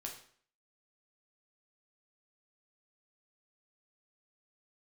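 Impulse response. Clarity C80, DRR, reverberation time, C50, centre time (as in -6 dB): 11.0 dB, 0.0 dB, 0.55 s, 7.0 dB, 23 ms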